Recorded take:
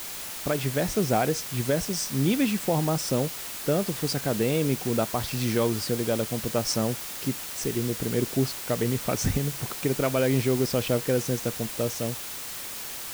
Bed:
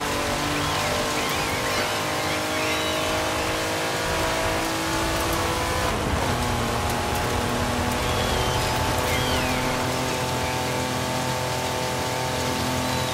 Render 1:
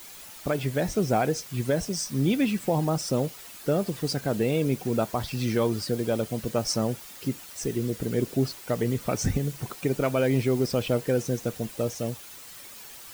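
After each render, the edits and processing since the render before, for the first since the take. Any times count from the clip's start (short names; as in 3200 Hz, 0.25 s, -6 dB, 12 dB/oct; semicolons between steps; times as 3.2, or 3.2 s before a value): denoiser 10 dB, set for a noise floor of -37 dBFS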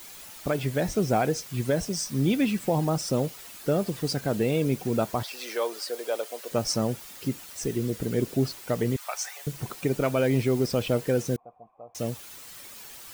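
5.23–6.52 HPF 460 Hz 24 dB/oct; 8.96–9.47 steep high-pass 710 Hz; 11.36–11.95 vocal tract filter a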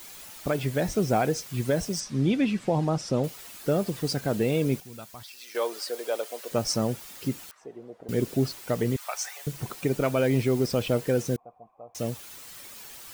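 2–3.24 air absorption 79 m; 4.8–5.55 passive tone stack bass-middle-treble 5-5-5; 7.51–8.09 auto-wah 720–1500 Hz, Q 3.1, down, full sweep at -29 dBFS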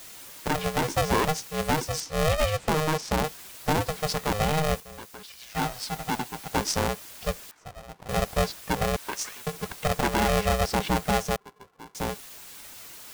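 polarity switched at an audio rate 310 Hz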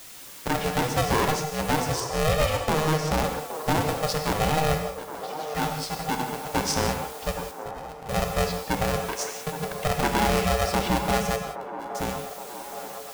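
on a send: band-limited delay 0.82 s, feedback 64%, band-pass 670 Hz, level -9 dB; on the sum: non-linear reverb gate 0.21 s flat, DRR 4.5 dB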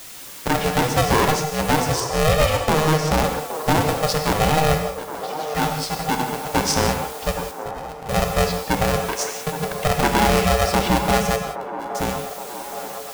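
gain +5.5 dB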